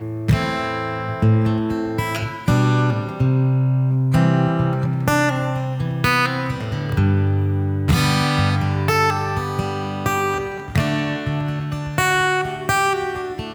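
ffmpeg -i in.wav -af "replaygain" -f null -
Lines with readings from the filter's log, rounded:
track_gain = +1.8 dB
track_peak = 0.455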